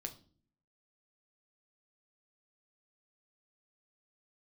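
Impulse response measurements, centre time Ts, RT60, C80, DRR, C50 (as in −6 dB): 7 ms, 0.45 s, 19.5 dB, 5.5 dB, 15.0 dB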